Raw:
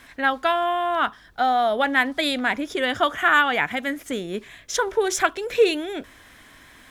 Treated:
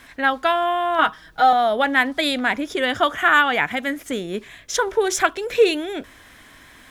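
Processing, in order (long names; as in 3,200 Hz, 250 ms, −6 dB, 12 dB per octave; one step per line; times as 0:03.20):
0:00.98–0:01.53: comb filter 6.3 ms, depth 96%
level +2 dB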